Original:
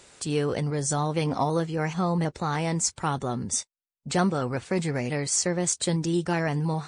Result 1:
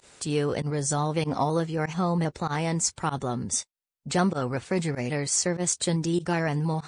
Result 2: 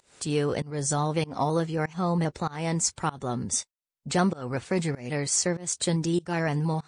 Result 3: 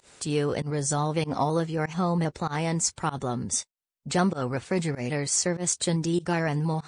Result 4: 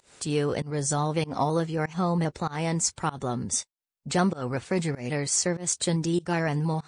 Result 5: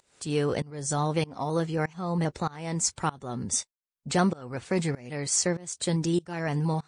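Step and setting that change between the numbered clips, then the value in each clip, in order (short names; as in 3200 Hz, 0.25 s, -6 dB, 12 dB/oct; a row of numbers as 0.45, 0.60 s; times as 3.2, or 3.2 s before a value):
pump, release: 62, 276, 106, 186, 527 ms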